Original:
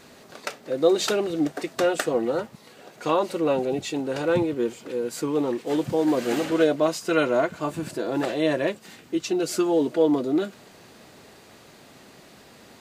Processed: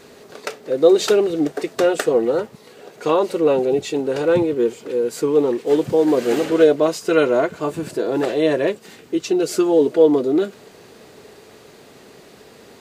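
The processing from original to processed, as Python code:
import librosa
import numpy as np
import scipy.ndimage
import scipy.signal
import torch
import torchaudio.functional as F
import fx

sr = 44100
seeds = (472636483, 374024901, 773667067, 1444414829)

y = fx.peak_eq(x, sr, hz=430.0, db=9.5, octaves=0.39)
y = y * librosa.db_to_amplitude(2.5)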